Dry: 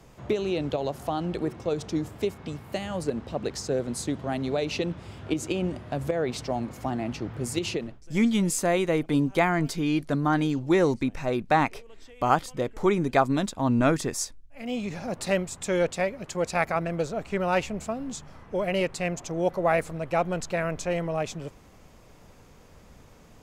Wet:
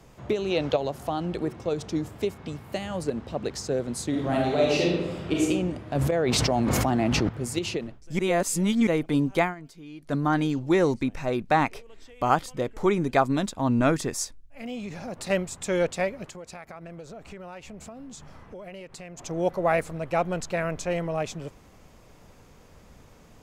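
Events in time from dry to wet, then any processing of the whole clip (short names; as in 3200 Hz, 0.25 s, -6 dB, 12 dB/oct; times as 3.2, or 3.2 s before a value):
0.5–0.77 spectral gain 450–6800 Hz +6 dB
4.09–5.43 reverb throw, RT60 1.1 s, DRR -4 dB
5.95–7.29 fast leveller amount 100%
8.19–8.87 reverse
9.41–10.15 dip -17.5 dB, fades 0.14 s
14.66–15.3 compressor 2:1, threshold -34 dBFS
16.26–19.19 compressor, threshold -39 dBFS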